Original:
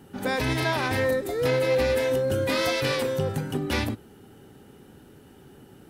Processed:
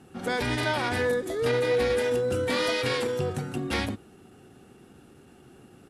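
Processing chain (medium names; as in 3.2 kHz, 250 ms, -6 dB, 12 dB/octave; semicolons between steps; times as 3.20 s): low-pass 12 kHz 24 dB/octave; bass shelf 160 Hz -4.5 dB; pitch shift -1 st; trim -1 dB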